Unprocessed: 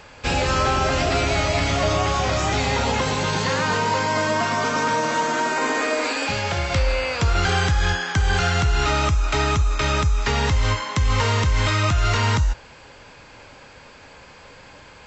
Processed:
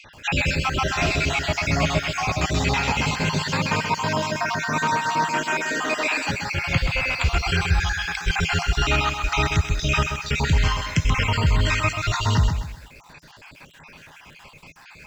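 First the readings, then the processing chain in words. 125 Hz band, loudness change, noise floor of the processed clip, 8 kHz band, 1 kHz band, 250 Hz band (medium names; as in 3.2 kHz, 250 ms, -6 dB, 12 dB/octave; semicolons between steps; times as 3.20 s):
-1.5 dB, -1.5 dB, -48 dBFS, no reading, -2.5 dB, -0.5 dB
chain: random holes in the spectrogram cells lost 50%; graphic EQ with 31 bands 160 Hz +8 dB, 500 Hz -8 dB, 2.5 kHz +8 dB; bit-crushed delay 130 ms, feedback 35%, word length 8-bit, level -6.5 dB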